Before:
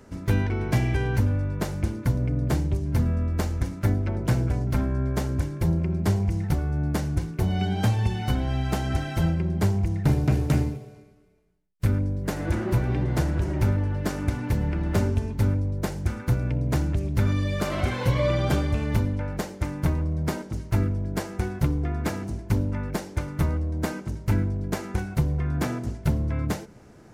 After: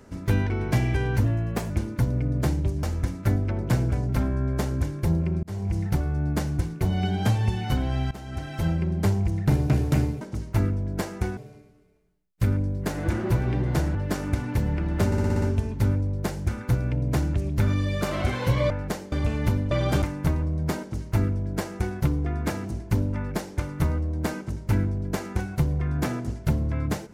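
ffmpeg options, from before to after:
ffmpeg -i in.wav -filter_complex "[0:a]asplit=19[link_01][link_02][link_03][link_04][link_05][link_06][link_07][link_08][link_09][link_10][link_11][link_12][link_13][link_14][link_15][link_16][link_17][link_18][link_19];[link_01]atrim=end=1.244[link_20];[link_02]atrim=start=1.24:end=1.77,asetpts=PTS-STARTPTS,asetrate=50715,aresample=44100,atrim=end_sample=20324,asetpts=PTS-STARTPTS[link_21];[link_03]atrim=start=1.766:end=2.902[link_22];[link_04]atrim=start=3.408:end=6.01,asetpts=PTS-STARTPTS,afade=type=out:start_time=2.598:duration=0.004:curve=hsin[link_23];[link_05]atrim=start=6.01:end=8.69,asetpts=PTS-STARTPTS,afade=type=in:duration=0.33,afade=type=out:start_time=2.676:duration=0.004:curve=hsin:silence=0.133352[link_24];[link_06]atrim=start=8.69:end=10.792,asetpts=PTS-STARTPTS,afade=type=in:duration=0.71:silence=0.133352[link_25];[link_07]atrim=start=20.388:end=21.552[link_26];[link_08]atrim=start=10.788:end=13.372[link_27];[link_09]atrim=start=13.898:end=15.072[link_28];[link_10]atrim=start=15.008:end=15.072[link_29];[link_11]atrim=start=15.008:end=15.072[link_30];[link_12]atrim=start=15.008:end=15.072[link_31];[link_13]atrim=start=15.008:end=15.072[link_32];[link_14]atrim=start=15.008:end=15.072[link_33];[link_15]atrim=start=15.008:end=18.292[link_34];[link_16]atrim=start=19.188:end=19.612[link_35];[link_17]atrim=start=18.598:end=19.192[link_36];[link_18]atrim=start=18.288:end=18.602[link_37];[link_19]atrim=start=19.608[link_38];[link_20][link_21]acrossfade=duration=0.004:curve1=hsin:curve2=hsin[link_39];[link_39][link_22]acrossfade=duration=0.004:curve1=hsin:curve2=hsin[link_40];[link_23][link_24][link_25]concat=n=3:v=0:a=1[link_41];[link_40][link_41]acrossfade=duration=0.004:curve1=hsin:curve2=hsin[link_42];[link_42][link_26]acrossfade=duration=0.004:curve1=hsin:curve2=hsin[link_43];[link_43][link_27]acrossfade=duration=0.004:curve1=hsin:curve2=hsin[link_44];[link_44][link_28]acrossfade=duration=0.004:curve1=hsin:curve2=hsin[link_45];[link_45][link_29]acrossfade=duration=0.004:curve1=hsin:curve2=hsin[link_46];[link_46][link_30]acrossfade=duration=0.004:curve1=hsin:curve2=hsin[link_47];[link_47][link_31]acrossfade=duration=0.004:curve1=hsin:curve2=hsin[link_48];[link_48][link_32]acrossfade=duration=0.004:curve1=hsin:curve2=hsin[link_49];[link_49][link_33]acrossfade=duration=0.004:curve1=hsin:curve2=hsin[link_50];[link_50][link_34]acrossfade=duration=0.004:curve1=hsin:curve2=hsin[link_51];[link_51][link_35]acrossfade=duration=0.004:curve1=hsin:curve2=hsin[link_52];[link_52][link_36]acrossfade=duration=0.004:curve1=hsin:curve2=hsin[link_53];[link_53][link_37]acrossfade=duration=0.004:curve1=hsin:curve2=hsin[link_54];[link_54][link_38]acrossfade=duration=0.004:curve1=hsin:curve2=hsin" out.wav

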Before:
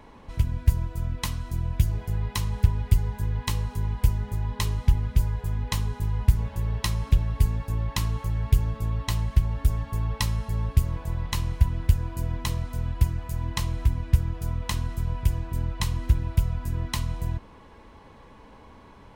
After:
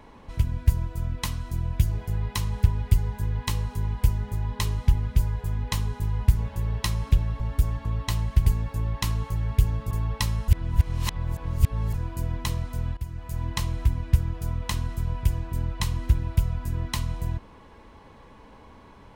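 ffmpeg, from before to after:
ffmpeg -i in.wav -filter_complex "[0:a]asplit=8[link_01][link_02][link_03][link_04][link_05][link_06][link_07][link_08];[link_01]atrim=end=7.402[link_09];[link_02]atrim=start=9.458:end=9.912[link_10];[link_03]atrim=start=8.848:end=9.462[link_11];[link_04]atrim=start=7.398:end=8.852[link_12];[link_05]atrim=start=9.908:end=10.482[link_13];[link_06]atrim=start=10.478:end=11.942,asetpts=PTS-STARTPTS,areverse[link_14];[link_07]atrim=start=11.938:end=12.97,asetpts=PTS-STARTPTS,afade=type=out:start_time=1.028:duration=0.004:curve=hsin:silence=0.141254[link_15];[link_08]atrim=start=12.97,asetpts=PTS-STARTPTS,afade=type=in:duration=0.43:silence=0.141254[link_16];[link_09][link_10]acrossfade=duration=0.004:curve1=hsin:curve2=hsin[link_17];[link_17][link_11]acrossfade=duration=0.004:curve1=hsin:curve2=hsin[link_18];[link_18][link_12]acrossfade=duration=0.004:curve1=hsin:curve2=hsin[link_19];[link_19][link_13]acrossfade=duration=0.004:curve1=hsin:curve2=hsin[link_20];[link_20][link_14]acrossfade=duration=0.004:curve1=hsin:curve2=hsin[link_21];[link_15][link_16]concat=n=2:v=0:a=1[link_22];[link_21][link_22]acrossfade=duration=0.004:curve1=hsin:curve2=hsin" out.wav

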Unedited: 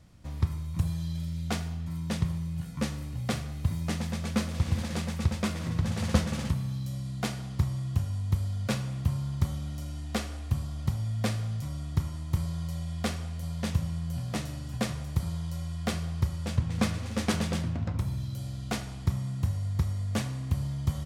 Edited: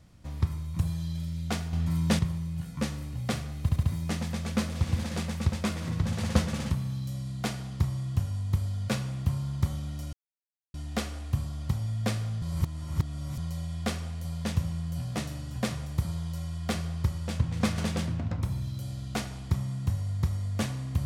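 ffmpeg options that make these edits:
ffmpeg -i in.wav -filter_complex "[0:a]asplit=10[link_01][link_02][link_03][link_04][link_05][link_06][link_07][link_08][link_09][link_10];[link_01]atrim=end=1.732[link_11];[link_02]atrim=start=1.728:end=2.192,asetpts=PTS-STARTPTS,volume=7dB[link_12];[link_03]atrim=start=2.188:end=3.692[link_13];[link_04]atrim=start=3.618:end=3.692[link_14];[link_05]atrim=start=3.618:end=3.692[link_15];[link_06]atrim=start=3.618:end=9.92,asetpts=PTS-STARTPTS,afade=type=out:start_time=6.298:duration=0.004:curve=hsin,apad=pad_dur=0.61[link_16];[link_07]atrim=start=9.92:end=11.602,asetpts=PTS-STARTPTS,afade=type=in:duration=0.004:curve=hsin[link_17];[link_08]atrim=start=11.598:end=12.562,asetpts=PTS-STARTPTS,areverse[link_18];[link_09]atrim=start=12.558:end=16.962[link_19];[link_10]atrim=start=17.338[link_20];[link_11][link_12]acrossfade=duration=0.004:curve1=hsin:curve2=hsin[link_21];[link_21][link_13]acrossfade=duration=0.004:curve1=hsin:curve2=hsin[link_22];[link_22][link_14]acrossfade=duration=0.004:curve1=hsin:curve2=hsin[link_23];[link_23][link_15]acrossfade=duration=0.004:curve1=hsin:curve2=hsin[link_24];[link_16][link_17]concat=n=2:v=0:a=1[link_25];[link_24][link_25]acrossfade=duration=0.004:curve1=hsin:curve2=hsin[link_26];[link_26][link_18]acrossfade=duration=0.004:curve1=hsin:curve2=hsin[link_27];[link_27][link_19]acrossfade=duration=0.004:curve1=hsin:curve2=hsin[link_28];[link_28][link_20]acrossfade=duration=0.004:curve1=hsin:curve2=hsin" out.wav

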